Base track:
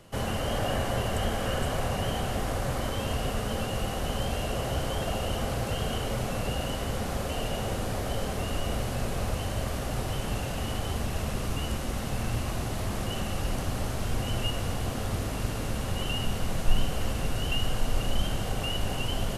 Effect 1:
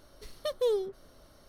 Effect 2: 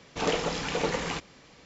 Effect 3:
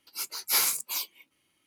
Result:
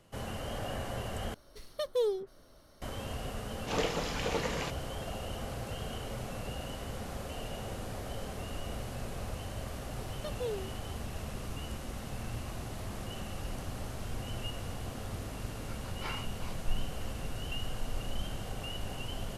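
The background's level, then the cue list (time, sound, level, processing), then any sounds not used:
base track −9 dB
0:01.34: overwrite with 1 −2 dB
0:03.51: mix in 2 −5 dB
0:09.79: mix in 1 −9 dB
0:15.51: mix in 3 −5.5 dB + low-pass filter 1,700 Hz

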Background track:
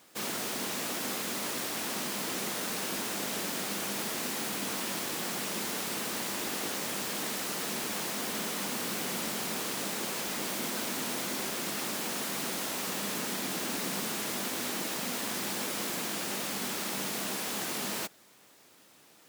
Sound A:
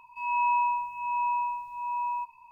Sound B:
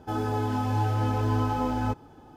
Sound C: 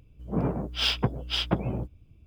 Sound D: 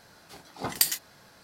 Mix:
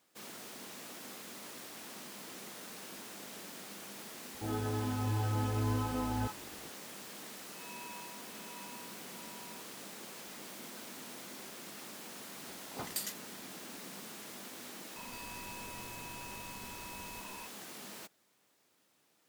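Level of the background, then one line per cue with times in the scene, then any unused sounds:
background track −13.5 dB
0:04.34: mix in B −7 dB + multiband delay without the direct sound lows, highs 50 ms, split 810 Hz
0:07.37: mix in A −9.5 dB + first difference
0:12.15: mix in D −9 dB + soft clipping −20 dBFS
0:14.96: mix in A −16.5 dB + every bin compressed towards the loudest bin 10 to 1
not used: C

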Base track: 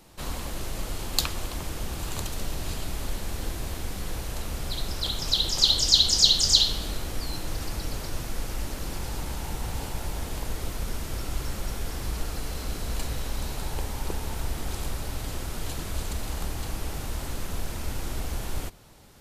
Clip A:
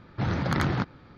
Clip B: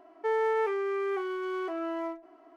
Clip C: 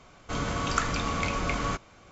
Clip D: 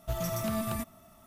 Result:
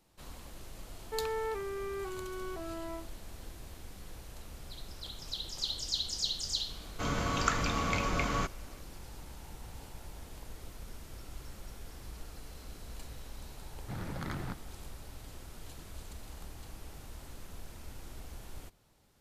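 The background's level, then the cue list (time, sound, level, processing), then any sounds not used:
base track −15 dB
0:00.88: mix in B −8 dB
0:06.70: mix in C −2.5 dB
0:13.70: mix in A −13.5 dB
not used: D

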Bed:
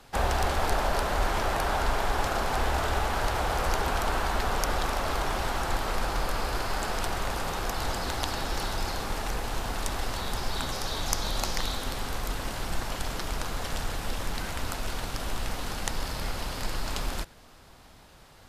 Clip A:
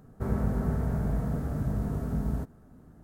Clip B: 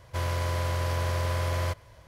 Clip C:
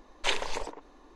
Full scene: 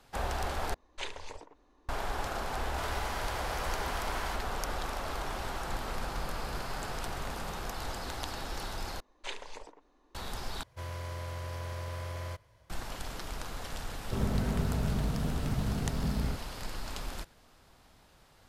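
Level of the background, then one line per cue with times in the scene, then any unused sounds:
bed −7.5 dB
0:00.74: overwrite with C −11 dB + parametric band 80 Hz +15 dB
0:02.63: mix in B −5 dB + high-pass filter 1,100 Hz
0:05.24: mix in A −11.5 dB + downward compressor, threshold −33 dBFS
0:09.00: overwrite with C −12 dB
0:10.63: overwrite with B −10.5 dB
0:13.91: mix in A −2.5 dB

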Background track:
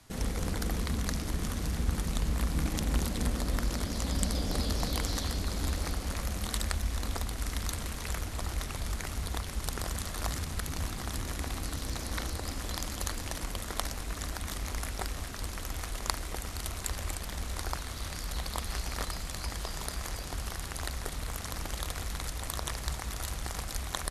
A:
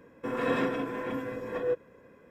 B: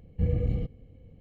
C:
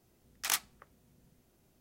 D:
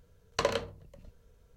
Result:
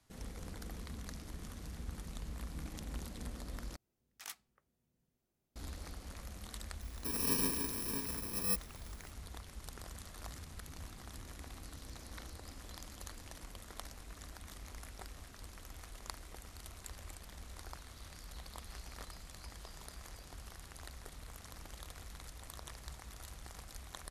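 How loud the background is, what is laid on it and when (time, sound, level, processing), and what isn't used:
background track −14 dB
0:03.76: overwrite with C −16.5 dB
0:06.81: mix in A −5.5 dB + samples in bit-reversed order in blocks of 64 samples
not used: B, D

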